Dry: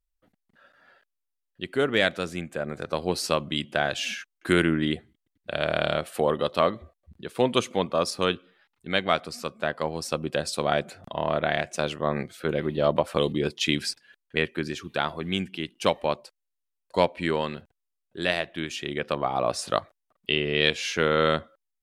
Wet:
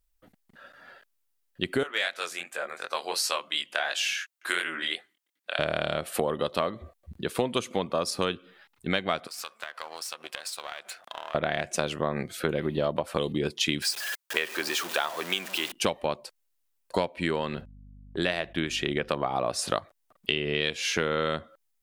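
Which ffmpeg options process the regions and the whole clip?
ffmpeg -i in.wav -filter_complex "[0:a]asettb=1/sr,asplit=3[link_01][link_02][link_03];[link_01]atrim=end=1.834[link_04];[link_02]atrim=start=1.83:end=5.59,asetpts=PTS-STARTPTS,afade=type=in:duration=0.004:curve=qsin,afade=type=out:start_time=3.756:duration=0.004:curve=qsin,highpass=900,flanger=delay=19:depth=5.8:speed=2.8[link_05];[link_03]atrim=start=5.586[link_06];[link_04][link_05]acrossfade=duration=0.004:curve1=hsin:curve2=qsin[link_07];[link_07][link_06]acrossfade=duration=0.004:curve1=qsin:curve2=hsin,asettb=1/sr,asplit=3[link_08][link_09][link_10];[link_08]atrim=end=9.274[link_11];[link_09]atrim=start=9.27:end=11.35,asetpts=PTS-STARTPTS,afade=type=in:duration=0.004:curve=qsin,afade=type=out:start_time=2.076:duration=0.004:curve=qsin,aeval=exprs='if(lt(val(0),0),0.447*val(0),val(0))':channel_layout=same,highpass=1100,acompressor=threshold=-40dB:ratio=10:attack=3.2:release=140:knee=1:detection=peak[link_12];[link_10]atrim=start=11.346[link_13];[link_11][link_12]acrossfade=duration=0.004:curve1=hsin:curve2=qsin[link_14];[link_14][link_13]acrossfade=duration=0.004:curve1=qsin:curve2=hsin,asettb=1/sr,asplit=3[link_15][link_16][link_17];[link_15]atrim=end=13.824[link_18];[link_16]atrim=start=13.82:end=15.72,asetpts=PTS-STARTPTS,afade=type=in:duration=0.004:curve=qsin,afade=type=out:start_time=1.896:duration=0.004:curve=qsin,aeval=exprs='val(0)+0.5*0.0188*sgn(val(0))':channel_layout=same,highpass=590,bandreject=frequency=2100:width=29[link_19];[link_17]atrim=start=15.716[link_20];[link_18][link_19]acrossfade=duration=0.004:curve1=hsin:curve2=qsin[link_21];[link_21][link_20]acrossfade=duration=0.004:curve1=qsin:curve2=hsin,asettb=1/sr,asplit=3[link_22][link_23][link_24];[link_22]atrim=end=17.394[link_25];[link_23]atrim=start=17.39:end=19.09,asetpts=PTS-STARTPTS,afade=type=in:duration=0.004:curve=qsin,afade=type=out:start_time=1.696:duration=0.004:curve=qsin,agate=range=-26dB:threshold=-53dB:ratio=16:release=100:detection=peak,highshelf=frequency=5800:gain=-7,aeval=exprs='val(0)+0.00178*(sin(2*PI*50*n/s)+sin(2*PI*2*50*n/s)/2+sin(2*PI*3*50*n/s)/3+sin(2*PI*4*50*n/s)/4+sin(2*PI*5*50*n/s)/5)':channel_layout=same[link_26];[link_24]atrim=start=19.086[link_27];[link_25][link_26]acrossfade=duration=0.004:curve1=hsin:curve2=qsin[link_28];[link_28][link_27]acrossfade=duration=0.004:curve1=qsin:curve2=hsin,highshelf=frequency=9500:gain=5.5,acompressor=threshold=-31dB:ratio=6,volume=7dB" out.wav

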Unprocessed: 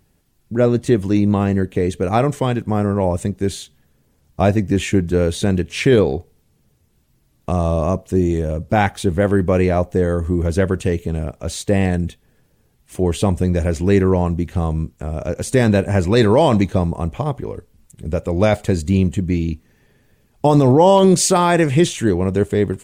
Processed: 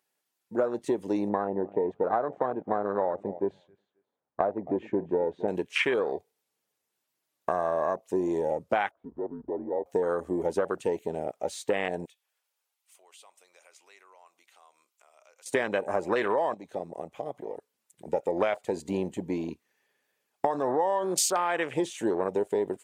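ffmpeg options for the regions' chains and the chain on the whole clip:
ffmpeg -i in.wav -filter_complex "[0:a]asettb=1/sr,asplit=3[link_01][link_02][link_03];[link_01]atrim=end=1.294[link_04];[link_02]atrim=start=1.29:end=5.48,asetpts=PTS-STARTPTS,afade=type=in:duration=0.004:curve=qsin,afade=type=out:start_time=4.186:duration=0.004:curve=qsin,lowpass=1100,aecho=1:1:267|534:0.112|0.0303,atrim=end_sample=184779[link_05];[link_03]atrim=start=5.476[link_06];[link_04][link_05]acrossfade=duration=0.004:curve1=hsin:curve2=qsin[link_07];[link_07][link_06]acrossfade=duration=0.004:curve1=qsin:curve2=hsin,asettb=1/sr,asplit=3[link_08][link_09][link_10];[link_08]atrim=end=8.914[link_11];[link_09]atrim=start=8.91:end=9.86,asetpts=PTS-STARTPTS,afade=type=in:duration=0.004:curve=qsin,afade=type=out:start_time=0.946:duration=0.004:curve=qsin,lowpass=frequency=1000:width=0.5412,lowpass=frequency=1000:width=1.3066,acompressor=threshold=-20dB:ratio=8:attack=3.2:release=140:knee=1:detection=peak,afreqshift=-140[link_12];[link_10]atrim=start=9.856[link_13];[link_11][link_12]acrossfade=duration=0.004:curve1=hsin:curve2=qsin[link_14];[link_14][link_13]acrossfade=duration=0.004:curve1=qsin:curve2=hsin,asettb=1/sr,asplit=3[link_15][link_16][link_17];[link_15]atrim=end=12.054[link_18];[link_16]atrim=start=12.05:end=15.46,asetpts=PTS-STARTPTS,afade=type=in:duration=0.004:curve=qsin,afade=type=out:start_time=3.406:duration=0.004:curve=qsin,highpass=1000,equalizer=frequency=1700:width=5.7:gain=-10,acompressor=threshold=-47dB:ratio=2:attack=3.2:release=140:knee=1:detection=peak[link_19];[link_17]atrim=start=15.456[link_20];[link_18][link_19]acrossfade=duration=0.004:curve1=hsin:curve2=qsin[link_21];[link_21][link_20]acrossfade=duration=0.004:curve1=qsin:curve2=hsin,asettb=1/sr,asplit=3[link_22][link_23][link_24];[link_22]atrim=end=16.544[link_25];[link_23]atrim=start=16.54:end=18.07,asetpts=PTS-STARTPTS,afade=type=in:duration=0.004:curve=qsin,afade=type=out:start_time=1.526:duration=0.004:curve=qsin,highpass=82,acompressor=threshold=-30dB:ratio=2:attack=3.2:release=140:knee=1:detection=peak[link_26];[link_24]atrim=start=18.066[link_27];[link_25][link_26]acrossfade=duration=0.004:curve1=hsin:curve2=qsin[link_28];[link_28][link_27]acrossfade=duration=0.004:curve1=qsin:curve2=hsin,afwtdn=0.0562,highpass=630,acompressor=threshold=-27dB:ratio=16,volume=4.5dB" out.wav

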